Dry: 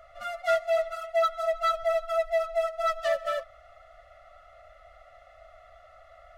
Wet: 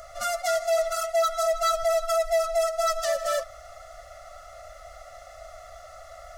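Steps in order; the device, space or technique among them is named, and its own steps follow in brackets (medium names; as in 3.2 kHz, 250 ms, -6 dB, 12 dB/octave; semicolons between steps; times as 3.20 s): over-bright horn tweeter (resonant high shelf 4.2 kHz +12 dB, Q 1.5; peak limiter -26 dBFS, peak gain reduction 11 dB); trim +8.5 dB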